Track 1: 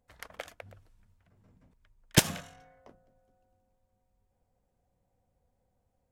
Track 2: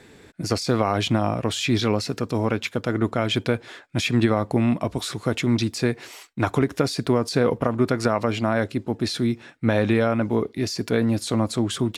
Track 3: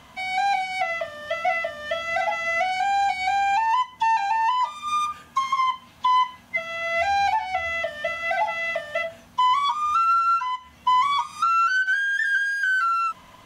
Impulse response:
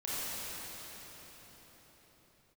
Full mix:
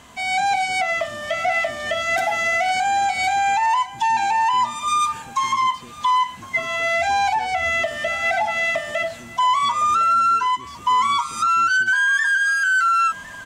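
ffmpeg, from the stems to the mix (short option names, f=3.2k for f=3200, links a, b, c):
-filter_complex "[0:a]highpass=310,volume=-16.5dB,asplit=3[a][b][c];[b]volume=-4dB[d];[c]volume=-4dB[e];[1:a]acompressor=threshold=-35dB:ratio=2.5,asoftclip=type=tanh:threshold=-29dB,volume=-9dB[f];[2:a]equalizer=f=7.7k:t=o:w=0.54:g=10.5,dynaudnorm=f=160:g=3:m=4.5dB,alimiter=limit=-14.5dB:level=0:latency=1:release=78,volume=1.5dB,asplit=2[g][h];[h]volume=-19dB[i];[3:a]atrim=start_sample=2205[j];[d][j]afir=irnorm=-1:irlink=0[k];[e][i]amix=inputs=2:normalize=0,aecho=0:1:1057:1[l];[a][f][g][k][l]amix=inputs=5:normalize=0"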